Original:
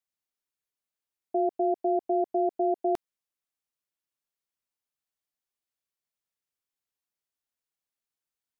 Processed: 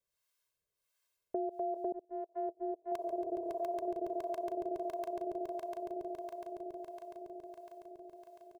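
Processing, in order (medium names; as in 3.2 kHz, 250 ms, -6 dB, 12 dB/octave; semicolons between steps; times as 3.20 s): comb 1.9 ms, depth 95%; echo with a slow build-up 139 ms, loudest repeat 8, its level -14 dB; peak limiter -27 dBFS, peak gain reduction 10.5 dB; delay 1009 ms -9.5 dB; 1.92–2.92 s: gate -31 dBFS, range -33 dB; harmonic tremolo 1.5 Hz, depth 70%, crossover 650 Hz; compression, threshold -39 dBFS, peak gain reduction 6 dB; trim +6.5 dB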